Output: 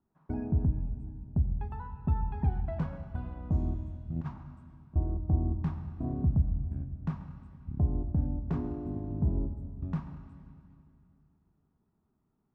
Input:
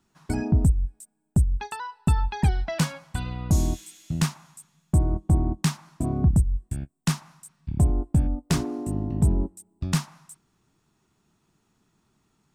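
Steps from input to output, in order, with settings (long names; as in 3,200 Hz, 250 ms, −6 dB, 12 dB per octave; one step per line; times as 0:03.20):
low-pass filter 1,000 Hz 12 dB per octave
0:04.16–0:04.96: compressor whose output falls as the input rises −26 dBFS, ratio −0.5
convolution reverb RT60 2.5 s, pre-delay 6 ms, DRR 6.5 dB
level −8.5 dB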